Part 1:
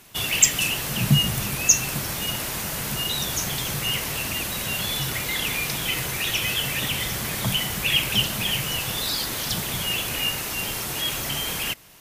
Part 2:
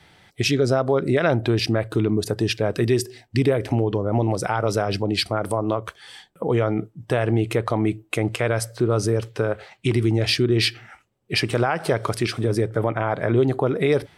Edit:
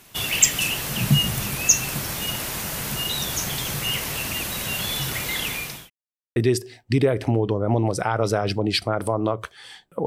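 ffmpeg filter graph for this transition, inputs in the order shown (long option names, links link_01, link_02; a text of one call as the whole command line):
ffmpeg -i cue0.wav -i cue1.wav -filter_complex "[0:a]apad=whole_dur=10.06,atrim=end=10.06,asplit=2[link_01][link_02];[link_01]atrim=end=5.9,asetpts=PTS-STARTPTS,afade=type=out:start_time=5.25:duration=0.65:curve=qsin[link_03];[link_02]atrim=start=5.9:end=6.36,asetpts=PTS-STARTPTS,volume=0[link_04];[1:a]atrim=start=2.8:end=6.5,asetpts=PTS-STARTPTS,afade=type=in:duration=0.004:curve=hsin[link_05];[link_03][link_04][link_05]concat=n=3:v=0:a=1" out.wav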